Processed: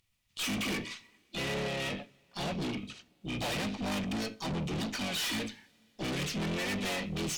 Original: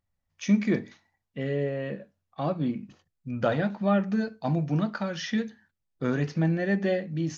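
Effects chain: resonant high shelf 1800 Hz +11 dB, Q 3; harmoniser -12 st -10 dB, +4 st -3 dB, +7 st -10 dB; tube stage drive 32 dB, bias 0.4; two-slope reverb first 0.21 s, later 3.3 s, from -22 dB, DRR 18 dB

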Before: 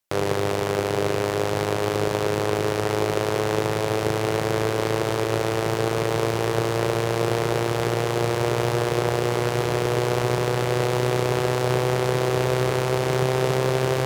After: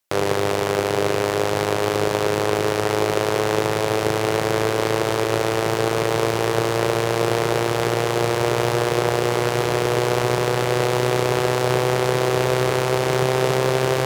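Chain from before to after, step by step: low shelf 250 Hz -5 dB; gain +4 dB

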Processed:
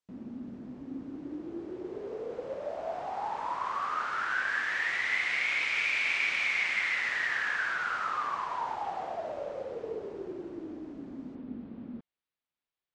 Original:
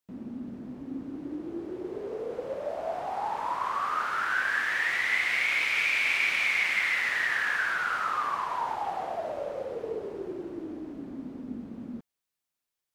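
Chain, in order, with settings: LPF 7800 Hz 24 dB/oct, from 11.35 s 4000 Hz; gain -3 dB

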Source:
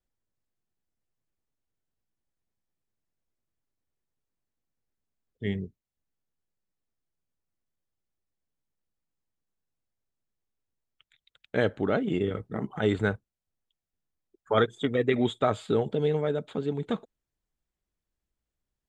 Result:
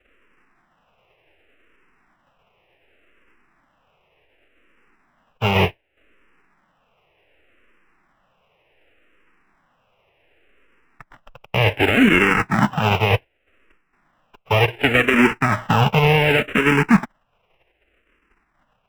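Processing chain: spectral whitening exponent 0.1; reverse; compressor 5:1, threshold -34 dBFS, peak gain reduction 14.5 dB; reverse; Chebyshev low-pass 2800 Hz, order 5; in parallel at -11.5 dB: sample-rate reducer 2200 Hz, jitter 0%; on the sum: maximiser +31 dB; endless phaser -0.67 Hz; gain -1 dB

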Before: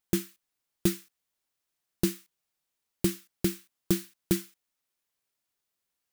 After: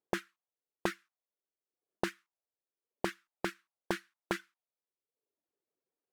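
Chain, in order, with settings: auto-wah 400–1500 Hz, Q 2.4, up, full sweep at -29 dBFS; reverb removal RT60 0.85 s; gain +9.5 dB

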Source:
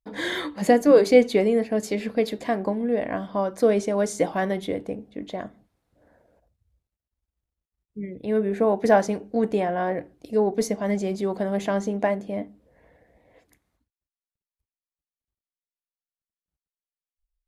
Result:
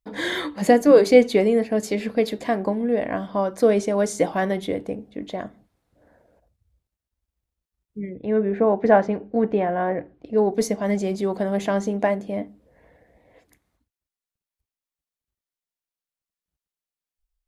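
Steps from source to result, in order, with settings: 8.09–10.38 LPF 2400 Hz 12 dB/oct; gain +2 dB

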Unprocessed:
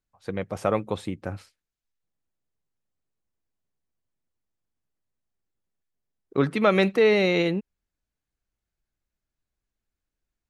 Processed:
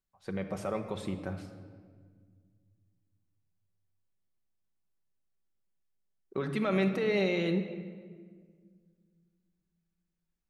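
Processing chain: limiter -17.5 dBFS, peak gain reduction 9 dB; shoebox room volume 2500 m³, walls mixed, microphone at 1.1 m; gain -5.5 dB

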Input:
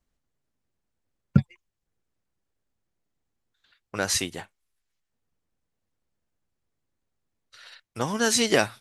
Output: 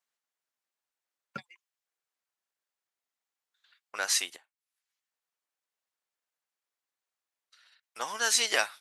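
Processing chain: HPF 890 Hz 12 dB/oct; 4.36–7.83 compressor 20:1, threshold -58 dBFS, peak gain reduction 22 dB; gain -1.5 dB

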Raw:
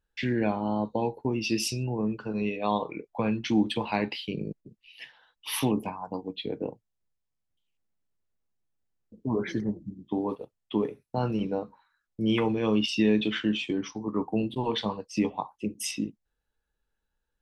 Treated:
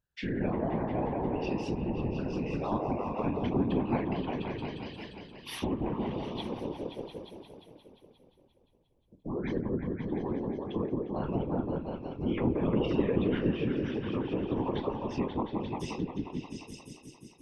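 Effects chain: repeats that get brighter 0.176 s, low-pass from 750 Hz, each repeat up 1 oct, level 0 dB; treble ducked by the level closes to 2000 Hz, closed at -20.5 dBFS; whisperiser; gain -6.5 dB

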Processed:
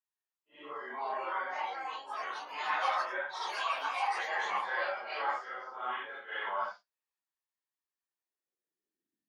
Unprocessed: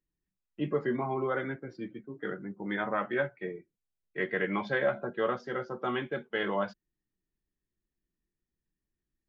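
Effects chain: phase scrambler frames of 0.2 s; echoes that change speed 0.628 s, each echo +6 st, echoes 3; high-pass sweep 930 Hz -> 230 Hz, 8.03–9.22; gain -5 dB

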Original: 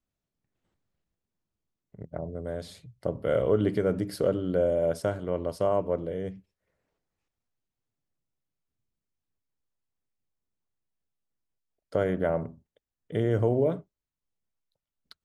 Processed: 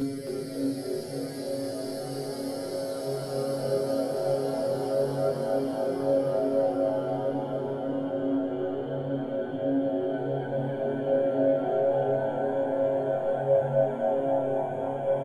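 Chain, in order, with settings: phase scrambler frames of 0.1 s; low shelf 190 Hz +3.5 dB; robotiser 137 Hz; Paulstretch 22×, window 0.50 s, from 4.04; chorus voices 4, 0.32 Hz, delay 15 ms, depth 3.9 ms; on a send: frequency-shifting echo 0.271 s, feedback 45%, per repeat +100 Hz, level -6 dB; on the sum: gain +2 dB

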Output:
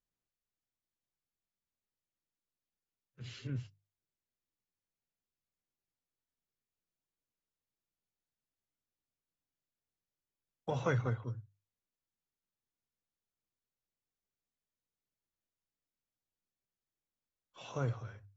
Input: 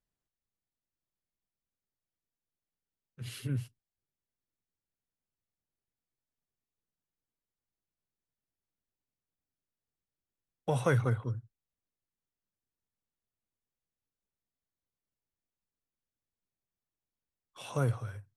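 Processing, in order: notches 50/100/150 Hz; gain -5 dB; AAC 24 kbps 32000 Hz

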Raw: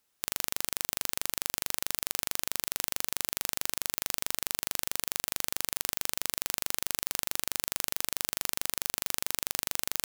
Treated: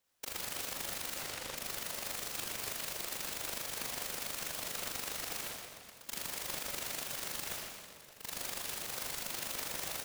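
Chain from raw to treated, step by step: 1.16–1.57 LPF 2600 Hz; 5.42–6.06 auto swell 0.553 s; whisperiser; HPF 290 Hz 12 dB/oct; 7.48–8.31 dip -22 dB, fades 0.13 s; echo 0.225 s -16.5 dB; shoebox room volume 3900 m³, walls mixed, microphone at 4.4 m; limiter -20 dBFS, peak gain reduction 7.5 dB; comb 1.6 ms; noise-modulated delay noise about 1500 Hz, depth 0.26 ms; gain -7 dB

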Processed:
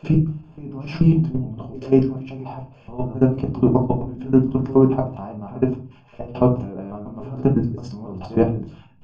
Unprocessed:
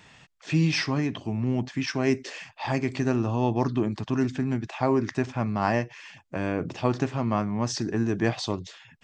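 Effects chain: slices in reverse order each 0.144 s, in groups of 4; low shelf 70 Hz +5.5 dB; in parallel at +0.5 dB: compressor 6:1, threshold -32 dBFS, peak gain reduction 14.5 dB; on the sum: running mean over 23 samples; level quantiser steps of 21 dB; reverse echo 67 ms -19.5 dB; shoebox room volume 180 m³, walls furnished, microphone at 1.3 m; gain +7 dB

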